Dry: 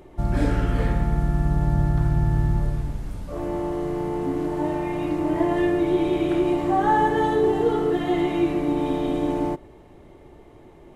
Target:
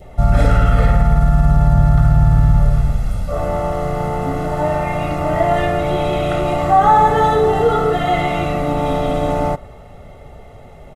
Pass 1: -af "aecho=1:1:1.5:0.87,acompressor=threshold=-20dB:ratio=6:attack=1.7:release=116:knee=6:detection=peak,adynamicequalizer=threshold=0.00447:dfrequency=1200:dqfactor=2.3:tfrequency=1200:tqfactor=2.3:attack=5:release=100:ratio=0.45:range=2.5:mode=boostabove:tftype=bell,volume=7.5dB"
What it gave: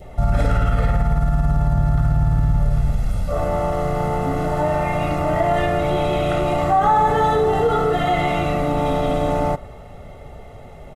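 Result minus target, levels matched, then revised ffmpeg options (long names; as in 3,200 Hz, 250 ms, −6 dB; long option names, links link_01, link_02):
downward compressor: peak gain reduction +6.5 dB
-af "aecho=1:1:1.5:0.87,acompressor=threshold=-12dB:ratio=6:attack=1.7:release=116:knee=6:detection=peak,adynamicequalizer=threshold=0.00447:dfrequency=1200:dqfactor=2.3:tfrequency=1200:tqfactor=2.3:attack=5:release=100:ratio=0.45:range=2.5:mode=boostabove:tftype=bell,volume=7.5dB"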